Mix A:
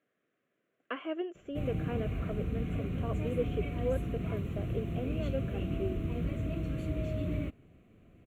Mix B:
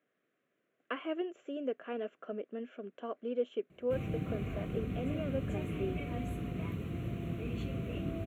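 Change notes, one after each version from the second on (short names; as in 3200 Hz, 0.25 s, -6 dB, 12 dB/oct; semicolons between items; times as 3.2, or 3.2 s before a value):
background: entry +2.35 s; master: add HPF 120 Hz 6 dB/oct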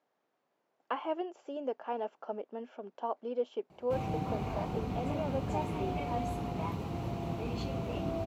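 speech -4.0 dB; master: remove fixed phaser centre 2100 Hz, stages 4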